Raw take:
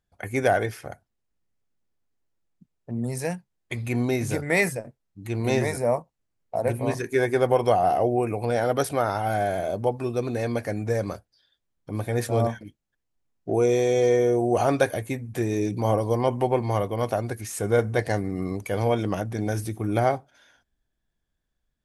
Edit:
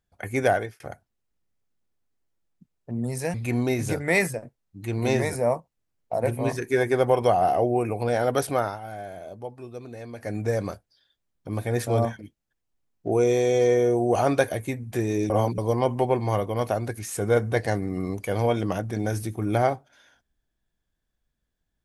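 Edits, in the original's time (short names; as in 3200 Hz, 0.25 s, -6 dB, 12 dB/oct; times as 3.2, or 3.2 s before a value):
0.5–0.8 fade out
3.34–3.76 cut
9.01–10.78 dip -12 dB, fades 0.20 s
15.72–16 reverse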